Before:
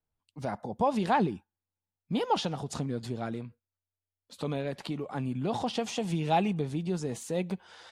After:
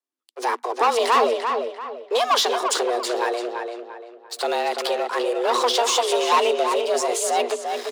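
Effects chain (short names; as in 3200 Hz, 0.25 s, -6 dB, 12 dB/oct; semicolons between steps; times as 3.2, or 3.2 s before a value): LPF 10000 Hz; tilt +2 dB/oct; sample leveller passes 3; frequency shift +240 Hz; on a send: tape echo 0.342 s, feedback 38%, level -4.5 dB, low-pass 3000 Hz; on the sum: gain +2 dB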